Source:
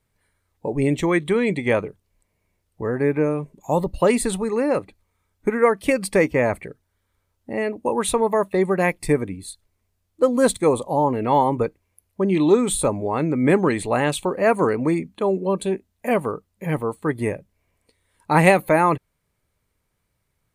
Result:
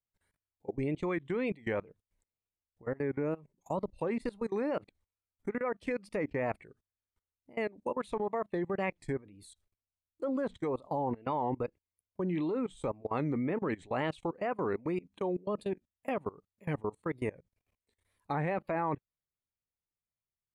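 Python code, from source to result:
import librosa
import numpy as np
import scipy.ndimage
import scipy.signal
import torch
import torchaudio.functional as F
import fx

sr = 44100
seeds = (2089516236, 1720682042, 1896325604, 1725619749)

y = fx.env_lowpass_down(x, sr, base_hz=2100.0, full_db=-13.0)
y = fx.level_steps(y, sr, step_db=23)
y = fx.wow_flutter(y, sr, seeds[0], rate_hz=2.1, depth_cents=130.0)
y = F.gain(torch.from_numpy(y), -8.5).numpy()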